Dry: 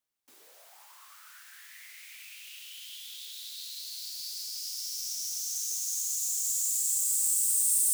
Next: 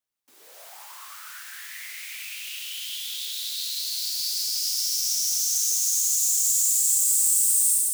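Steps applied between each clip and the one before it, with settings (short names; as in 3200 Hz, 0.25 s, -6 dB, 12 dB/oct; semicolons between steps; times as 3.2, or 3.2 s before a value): AGC gain up to 13 dB; in parallel at +1 dB: limiter -13.5 dBFS, peak gain reduction 9.5 dB; on the sum: gain -8.5 dB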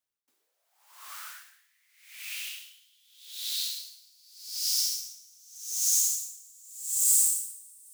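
reverb RT60 4.1 s, pre-delay 28 ms, DRR 14.5 dB; dB-linear tremolo 0.84 Hz, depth 32 dB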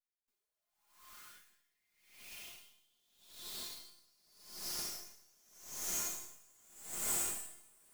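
minimum comb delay 4.8 ms; resonator 350 Hz, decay 0.42 s, harmonics all, mix 80%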